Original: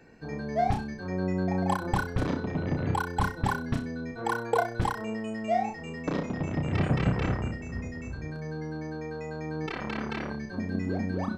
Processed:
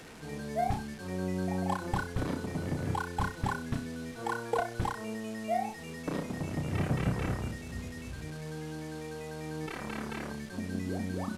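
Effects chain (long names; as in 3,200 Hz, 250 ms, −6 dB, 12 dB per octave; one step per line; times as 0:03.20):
linear delta modulator 64 kbit/s, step −38.5 dBFS
level −4.5 dB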